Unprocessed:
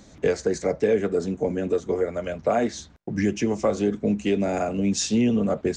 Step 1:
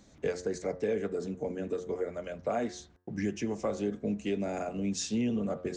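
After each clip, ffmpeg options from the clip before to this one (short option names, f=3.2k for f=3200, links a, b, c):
-af "bandreject=f=90.08:t=h:w=4,bandreject=f=180.16:t=h:w=4,bandreject=f=270.24:t=h:w=4,bandreject=f=360.32:t=h:w=4,bandreject=f=450.4:t=h:w=4,bandreject=f=540.48:t=h:w=4,bandreject=f=630.56:t=h:w=4,bandreject=f=720.64:t=h:w=4,bandreject=f=810.72:t=h:w=4,bandreject=f=900.8:t=h:w=4,bandreject=f=990.88:t=h:w=4,bandreject=f=1.08096k:t=h:w=4,bandreject=f=1.17104k:t=h:w=4,bandreject=f=1.26112k:t=h:w=4,bandreject=f=1.3512k:t=h:w=4,bandreject=f=1.44128k:t=h:w=4,bandreject=f=1.53136k:t=h:w=4,bandreject=f=1.62144k:t=h:w=4,bandreject=f=1.71152k:t=h:w=4,bandreject=f=1.8016k:t=h:w=4,bandreject=f=1.89168k:t=h:w=4,bandreject=f=1.98176k:t=h:w=4,volume=-9dB"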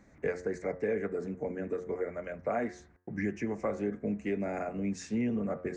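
-af "highshelf=f=2.6k:t=q:w=3:g=-8,volume=-1dB"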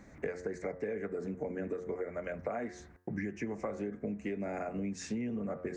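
-af "acompressor=threshold=-39dB:ratio=6,volume=5dB"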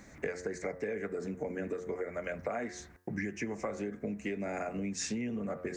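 -af "highshelf=f=2.1k:g=9.5"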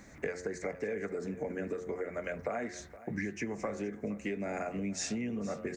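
-af "aecho=1:1:468:0.15"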